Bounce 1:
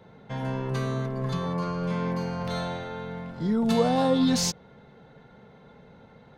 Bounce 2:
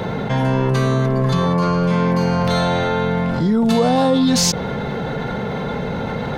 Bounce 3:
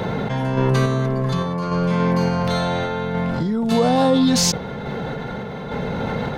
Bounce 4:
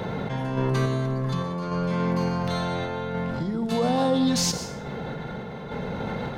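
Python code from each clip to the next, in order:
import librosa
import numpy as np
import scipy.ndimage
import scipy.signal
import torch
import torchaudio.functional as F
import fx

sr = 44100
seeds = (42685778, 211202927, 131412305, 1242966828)

y1 = fx.env_flatten(x, sr, amount_pct=70)
y1 = y1 * librosa.db_to_amplitude(5.0)
y2 = fx.tremolo_random(y1, sr, seeds[0], hz=3.5, depth_pct=55)
y3 = fx.rev_plate(y2, sr, seeds[1], rt60_s=0.6, hf_ratio=0.9, predelay_ms=105, drr_db=10.5)
y3 = y3 * librosa.db_to_amplitude(-6.5)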